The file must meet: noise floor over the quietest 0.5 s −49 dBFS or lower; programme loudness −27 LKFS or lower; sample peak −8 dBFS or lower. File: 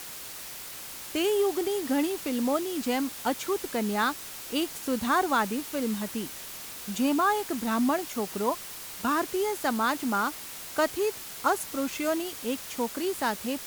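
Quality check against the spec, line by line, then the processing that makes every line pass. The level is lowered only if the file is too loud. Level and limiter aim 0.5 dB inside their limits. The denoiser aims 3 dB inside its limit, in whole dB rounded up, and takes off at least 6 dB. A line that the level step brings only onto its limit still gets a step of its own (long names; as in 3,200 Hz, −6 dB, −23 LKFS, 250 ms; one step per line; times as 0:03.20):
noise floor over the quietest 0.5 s −41 dBFS: out of spec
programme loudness −29.0 LKFS: in spec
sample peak −11.5 dBFS: in spec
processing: broadband denoise 11 dB, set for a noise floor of −41 dBFS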